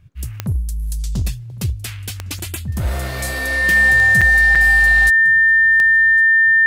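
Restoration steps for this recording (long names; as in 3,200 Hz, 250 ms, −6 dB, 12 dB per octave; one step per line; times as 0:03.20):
click removal
notch filter 1,800 Hz, Q 30
repair the gap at 0:02.39/0:04.21/0:04.55, 5.7 ms
echo removal 1,108 ms −22 dB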